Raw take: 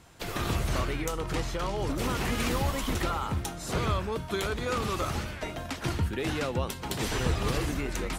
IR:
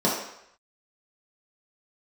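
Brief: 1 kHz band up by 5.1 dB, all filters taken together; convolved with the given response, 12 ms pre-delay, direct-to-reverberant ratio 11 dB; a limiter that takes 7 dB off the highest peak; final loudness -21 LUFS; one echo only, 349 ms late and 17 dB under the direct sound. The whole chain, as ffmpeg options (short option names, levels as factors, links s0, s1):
-filter_complex "[0:a]equalizer=f=1000:t=o:g=6.5,alimiter=limit=0.0944:level=0:latency=1,aecho=1:1:349:0.141,asplit=2[s0][s1];[1:a]atrim=start_sample=2205,adelay=12[s2];[s1][s2]afir=irnorm=-1:irlink=0,volume=0.0473[s3];[s0][s3]amix=inputs=2:normalize=0,volume=2.99"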